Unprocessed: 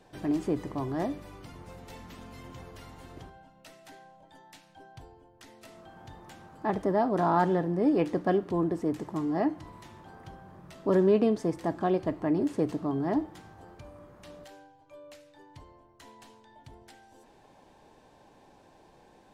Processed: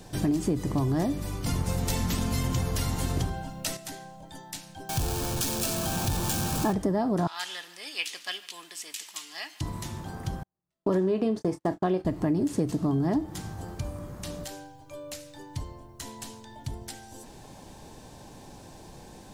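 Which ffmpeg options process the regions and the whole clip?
ffmpeg -i in.wav -filter_complex "[0:a]asettb=1/sr,asplit=3[link_01][link_02][link_03];[link_01]atrim=end=1.464[link_04];[link_02]atrim=start=1.46:end=3.77,asetpts=PTS-STARTPTS,afade=type=in:duration=0.004:curve=qsin,afade=type=out:start_time=2.306:duration=0.004:curve=qsin,acontrast=89,bandreject=frequency=50:width_type=h:width=6,bandreject=frequency=100:width_type=h:width=6,bandreject=frequency=150:width_type=h:width=6,bandreject=frequency=200:width_type=h:width=6,bandreject=frequency=250:width_type=h:width=6,bandreject=frequency=300:width_type=h:width=6,bandreject=frequency=350:width_type=h:width=6[link_05];[link_03]atrim=start=3.766[link_06];[link_04][link_05]acrossfade=duration=0.004:curve1=hsin:curve2=qsin[link_07];[link_07][link_06]acrossfade=duration=0.004:curve1=qsin:curve2=hsin,asettb=1/sr,asplit=3[link_08][link_09][link_10];[link_08]atrim=end=4.894[link_11];[link_09]atrim=start=4.89:end=6.73,asetpts=PTS-STARTPTS,afade=type=in:duration=0.004:curve=qsin,afade=type=out:start_time=1.836:duration=0.004:curve=qsin,aeval=exprs='val(0)+0.5*0.0141*sgn(val(0))':channel_layout=same,asuperstop=centerf=2000:order=12:qfactor=6.4[link_12];[link_10]atrim=start=6.726[link_13];[link_11][link_12]acrossfade=duration=0.004:curve1=hsin:curve2=qsin[link_14];[link_14][link_13]acrossfade=duration=0.004:curve1=qsin:curve2=hsin,asettb=1/sr,asplit=3[link_15][link_16][link_17];[link_15]atrim=end=7.274[link_18];[link_16]atrim=start=7.27:end=9.61,asetpts=PTS-STARTPTS,afade=type=in:duration=0.004:curve=qsin,afade=type=out:start_time=2.336:duration=0.004:curve=qsin,highpass=frequency=2800:width_type=q:width=2.3,aecho=1:1:147|294|441|588|735:0.0841|0.0496|0.0293|0.0173|0.0102,atrim=end_sample=103194[link_19];[link_17]atrim=start=9.606[link_20];[link_18][link_19]acrossfade=duration=0.004:curve1=hsin:curve2=qsin[link_21];[link_21][link_20]acrossfade=duration=0.004:curve1=qsin:curve2=hsin,asettb=1/sr,asplit=3[link_22][link_23][link_24];[link_22]atrim=end=10.434[link_25];[link_23]atrim=start=10.43:end=12.05,asetpts=PTS-STARTPTS,afade=type=in:duration=0.004:curve=qsin,afade=type=out:start_time=1.616:duration=0.004:curve=qsin,agate=range=-48dB:threshold=-37dB:ratio=16:release=100:detection=peak,bass=frequency=250:gain=-8,treble=frequency=4000:gain=-7,asplit=2[link_26][link_27];[link_27]adelay=27,volume=-11.5dB[link_28];[link_26][link_28]amix=inputs=2:normalize=0,atrim=end_sample=71442[link_29];[link_24]atrim=start=12.046[link_30];[link_25][link_29]acrossfade=duration=0.004:curve1=hsin:curve2=qsin[link_31];[link_31][link_30]acrossfade=duration=0.004:curve1=qsin:curve2=hsin,bass=frequency=250:gain=10,treble=frequency=4000:gain=13,acompressor=threshold=-30dB:ratio=6,volume=7dB" out.wav

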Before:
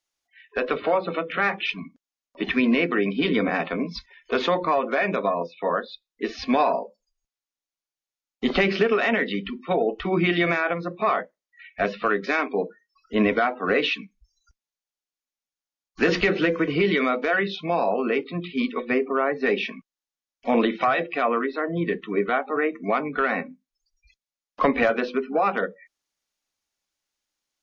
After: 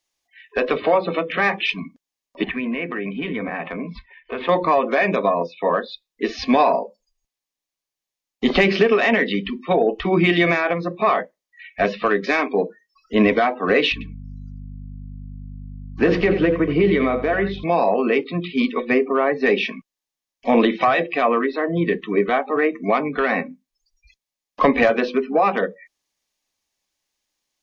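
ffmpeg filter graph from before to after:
ffmpeg -i in.wav -filter_complex "[0:a]asettb=1/sr,asplit=3[link_01][link_02][link_03];[link_01]atrim=end=2.444[link_04];[link_02]atrim=start=2.44:end=4.49,asetpts=PTS-STARTPTS,afade=type=in:duration=0.004:curve=qsin,afade=type=out:start_time=2.046:duration=0.004:curve=qsin,lowpass=frequency=2700:width=0.5412,lowpass=frequency=2700:width=1.3066,equalizer=frequency=350:width_type=o:width=1.5:gain=-4.5,acompressor=threshold=-32dB:ratio=2:attack=3.2:release=140:knee=1:detection=peak[link_05];[link_03]atrim=start=4.486[link_06];[link_04][link_05]acrossfade=duration=0.004:curve1=hsin:curve2=qsin[link_07];[link_07][link_06]acrossfade=duration=0.004:curve1=qsin:curve2=hsin,asettb=1/sr,asplit=3[link_08][link_09][link_10];[link_08]atrim=end=13.924[link_11];[link_09]atrim=start=13.92:end=17.64,asetpts=PTS-STARTPTS,afade=type=in:duration=0.004:curve=qsin,afade=type=out:start_time=3.716:duration=0.004:curve=qsin,lowpass=frequency=1200:poles=1,aeval=exprs='val(0)+0.0126*(sin(2*PI*50*n/s)+sin(2*PI*2*50*n/s)/2+sin(2*PI*3*50*n/s)/3+sin(2*PI*4*50*n/s)/4+sin(2*PI*5*50*n/s)/5)':channel_layout=same,aecho=1:1:87:0.251,atrim=end_sample=164052[link_12];[link_10]atrim=start=17.636[link_13];[link_11][link_12]acrossfade=duration=0.004:curve1=hsin:curve2=qsin[link_14];[link_14][link_13]acrossfade=duration=0.004:curve1=qsin:curve2=hsin,acontrast=30,bandreject=frequency=1400:width=6.1" out.wav

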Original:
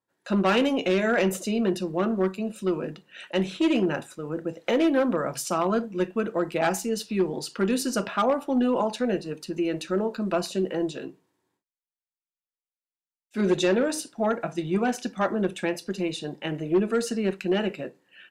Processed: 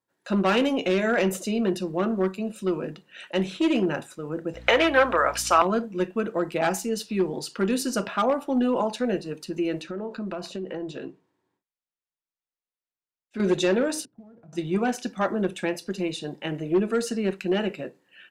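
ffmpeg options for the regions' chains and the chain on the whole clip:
ffmpeg -i in.wav -filter_complex "[0:a]asettb=1/sr,asplit=3[link_01][link_02][link_03];[link_01]atrim=end=4.544[link_04];[link_02]atrim=start=4.54:end=5.62,asetpts=PTS-STARTPTS,afade=type=in:duration=0.004:curve=qsin,afade=type=out:start_time=1.076:duration=0.004:curve=qsin,highpass=440,equalizer=frequency=1800:width=0.4:gain=12,aeval=exprs='val(0)+0.00708*(sin(2*PI*60*n/s)+sin(2*PI*2*60*n/s)/2+sin(2*PI*3*60*n/s)/3+sin(2*PI*4*60*n/s)/4+sin(2*PI*5*60*n/s)/5)':channel_layout=same[link_05];[link_03]atrim=start=5.616[link_06];[link_04][link_05]acrossfade=duration=0.004:curve1=hsin:curve2=qsin[link_07];[link_07][link_06]acrossfade=duration=0.004:curve1=qsin:curve2=hsin,asettb=1/sr,asplit=3[link_08][link_09][link_10];[link_08]atrim=end=9.814[link_11];[link_09]atrim=start=9.81:end=13.4,asetpts=PTS-STARTPTS,afade=type=in:duration=0.004:curve=qsin,afade=type=out:start_time=3.586:duration=0.004:curve=qsin,aemphasis=mode=reproduction:type=50fm,acompressor=threshold=-28dB:ratio=10:attack=3.2:release=140:knee=1:detection=peak[link_12];[link_10]atrim=start=13.396[link_13];[link_11][link_12]acrossfade=duration=0.004:curve1=hsin:curve2=qsin[link_14];[link_14][link_13]acrossfade=duration=0.004:curve1=qsin:curve2=hsin,asettb=1/sr,asplit=3[link_15][link_16][link_17];[link_15]atrim=end=14.054[link_18];[link_16]atrim=start=14.05:end=14.53,asetpts=PTS-STARTPTS,afade=type=in:duration=0.004:curve=qsin,afade=type=out:start_time=0.476:duration=0.004:curve=qsin,acompressor=threshold=-34dB:ratio=12:attack=3.2:release=140:knee=1:detection=peak,acrusher=bits=3:mode=log:mix=0:aa=0.000001,bandpass=frequency=120:width_type=q:width=1.4[link_19];[link_17]atrim=start=14.526[link_20];[link_18][link_19]acrossfade=duration=0.004:curve1=hsin:curve2=qsin[link_21];[link_21][link_20]acrossfade=duration=0.004:curve1=qsin:curve2=hsin" out.wav

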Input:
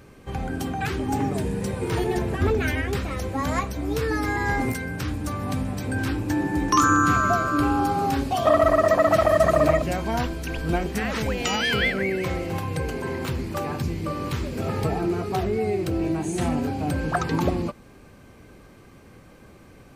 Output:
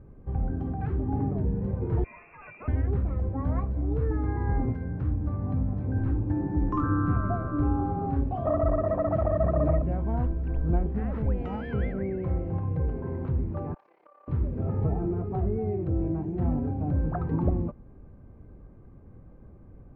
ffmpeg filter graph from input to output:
ffmpeg -i in.wav -filter_complex "[0:a]asettb=1/sr,asplit=3[link_01][link_02][link_03];[link_01]atrim=end=2.044[link_04];[link_02]atrim=start=2.04:end=2.68,asetpts=PTS-STARTPTS,afade=type=in:duration=0.004:curve=qsin,afade=type=out:start_time=0.636:duration=0.004:curve=qsin,highpass=frequency=340:poles=1,lowpass=frequency=2400:width_type=q:width=0.5098,lowpass=frequency=2400:width_type=q:width=0.6013,lowpass=frequency=2400:width_type=q:width=0.9,lowpass=frequency=2400:width_type=q:width=2.563,afreqshift=-2800[link_05];[link_03]atrim=start=2.676[link_06];[link_04][link_05]acrossfade=duration=0.004:curve1=hsin:curve2=qsin[link_07];[link_07][link_06]acrossfade=duration=0.004:curve1=qsin:curve2=hsin,asettb=1/sr,asplit=3[link_08][link_09][link_10];[link_08]atrim=end=13.744[link_11];[link_09]atrim=start=13.74:end=14.28,asetpts=PTS-STARTPTS,afade=type=in:duration=0.004:curve=qsin,afade=type=out:start_time=0.536:duration=0.004:curve=qsin,highpass=frequency=690:width=0.5412,highpass=frequency=690:width=1.3066,acompressor=threshold=-37dB:ratio=10:attack=3.2:release=140:knee=1:detection=peak,tremolo=f=34:d=0.788[link_12];[link_10]atrim=start=14.276[link_13];[link_11][link_12]acrossfade=duration=0.004:curve1=hsin:curve2=qsin[link_14];[link_14][link_13]acrossfade=duration=0.004:curve1=qsin:curve2=hsin,lowpass=1000,aemphasis=mode=reproduction:type=bsi,volume=-8.5dB" out.wav

